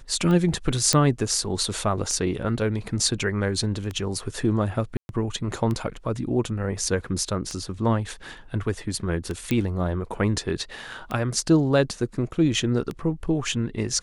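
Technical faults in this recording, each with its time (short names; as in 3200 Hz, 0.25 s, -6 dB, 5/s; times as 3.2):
tick 33 1/3 rpm -17 dBFS
0.93 pop -5 dBFS
4.97–5.09 gap 0.121 s
9.51 pop -11 dBFS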